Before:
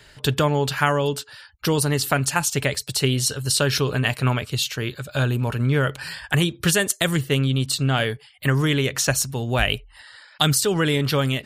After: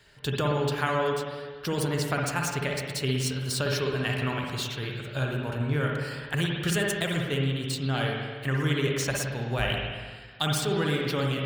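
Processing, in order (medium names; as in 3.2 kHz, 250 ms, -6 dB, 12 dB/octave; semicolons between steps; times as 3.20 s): median filter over 3 samples; spring tank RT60 1.6 s, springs 54/59 ms, chirp 70 ms, DRR -0.5 dB; trim -9 dB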